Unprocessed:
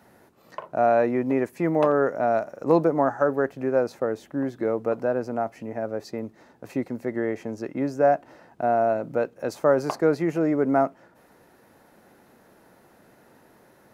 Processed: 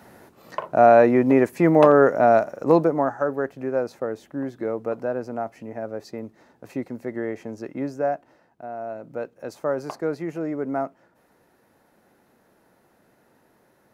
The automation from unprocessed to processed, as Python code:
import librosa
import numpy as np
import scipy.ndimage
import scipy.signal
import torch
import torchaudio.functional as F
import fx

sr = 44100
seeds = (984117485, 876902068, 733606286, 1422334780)

y = fx.gain(x, sr, db=fx.line((2.33, 6.5), (3.18, -2.0), (7.85, -2.0), (8.69, -13.0), (9.24, -5.5)))